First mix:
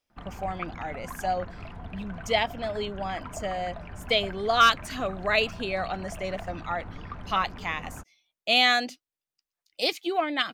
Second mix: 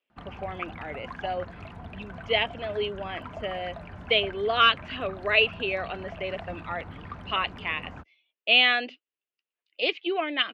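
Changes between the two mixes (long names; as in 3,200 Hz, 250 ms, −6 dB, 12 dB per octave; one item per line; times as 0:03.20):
speech: add loudspeaker in its box 290–3,200 Hz, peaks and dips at 410 Hz +5 dB, 800 Hz −7 dB, 1,300 Hz −3 dB, 2,800 Hz +9 dB
master: add high-pass filter 59 Hz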